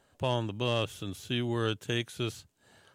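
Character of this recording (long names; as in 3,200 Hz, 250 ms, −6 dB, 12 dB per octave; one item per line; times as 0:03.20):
background noise floor −71 dBFS
spectral slope −4.5 dB per octave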